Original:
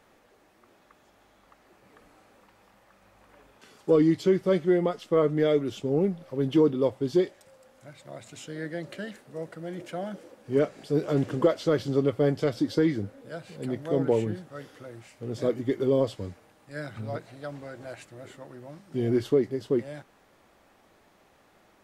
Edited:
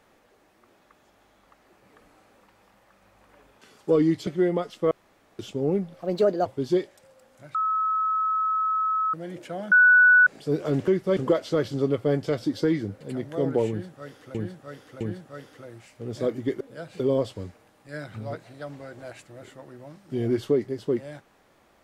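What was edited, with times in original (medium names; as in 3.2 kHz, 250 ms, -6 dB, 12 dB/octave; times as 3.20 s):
4.27–4.56 s: move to 11.31 s
5.20–5.68 s: room tone
6.31–6.89 s: speed 133%
7.98–9.57 s: bleep 1.29 kHz -21.5 dBFS
10.15–10.70 s: bleep 1.48 kHz -12 dBFS
13.15–13.54 s: move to 15.82 s
14.22–14.88 s: loop, 3 plays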